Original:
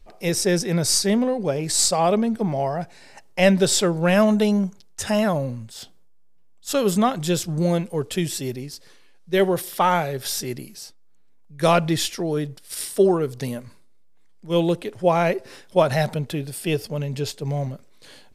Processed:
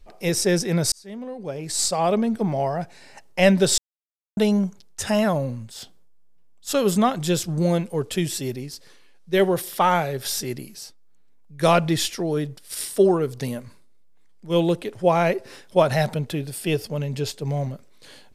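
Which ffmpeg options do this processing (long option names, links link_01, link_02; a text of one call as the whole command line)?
ffmpeg -i in.wav -filter_complex "[0:a]asplit=4[link_01][link_02][link_03][link_04];[link_01]atrim=end=0.92,asetpts=PTS-STARTPTS,afade=type=out:start_time=0.916:duration=0.004:curve=hsin[link_05];[link_02]atrim=start=0.92:end=3.78,asetpts=PTS-STARTPTS,afade=type=in:duration=1.41,afade=type=out:start_time=2.856:duration=0.004:curve=hsin[link_06];[link_03]atrim=start=3.78:end=4.37,asetpts=PTS-STARTPTS,volume=0[link_07];[link_04]atrim=start=4.37,asetpts=PTS-STARTPTS,afade=type=in:duration=0.004:curve=hsin[link_08];[link_05][link_06][link_07][link_08]concat=n=4:v=0:a=1" out.wav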